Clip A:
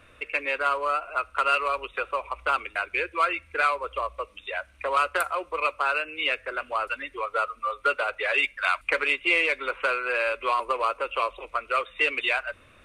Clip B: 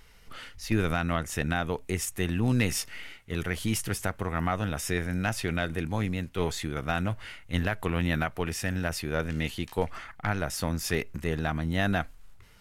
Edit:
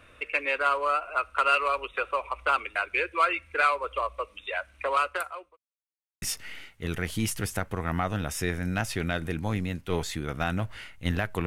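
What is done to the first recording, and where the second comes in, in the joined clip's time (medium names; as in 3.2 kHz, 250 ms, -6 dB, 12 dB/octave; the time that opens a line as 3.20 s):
clip A
4.84–5.57 s: fade out linear
5.57–6.22 s: mute
6.22 s: go over to clip B from 2.70 s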